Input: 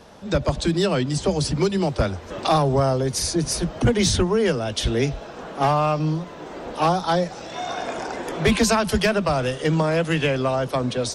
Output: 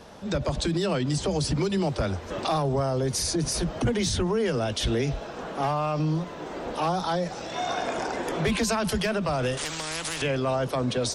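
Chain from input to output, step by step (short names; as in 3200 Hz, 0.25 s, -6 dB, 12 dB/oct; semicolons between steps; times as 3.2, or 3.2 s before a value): limiter -18 dBFS, peak gain reduction 8 dB; 9.57–10.22 spectral compressor 4:1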